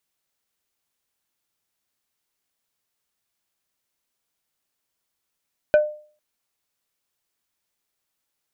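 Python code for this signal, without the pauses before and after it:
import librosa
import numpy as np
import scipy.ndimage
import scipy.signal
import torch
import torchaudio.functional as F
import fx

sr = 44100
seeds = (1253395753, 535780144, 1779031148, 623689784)

y = fx.strike_wood(sr, length_s=0.45, level_db=-9.0, body='plate', hz=603.0, decay_s=0.44, tilt_db=10.0, modes=5)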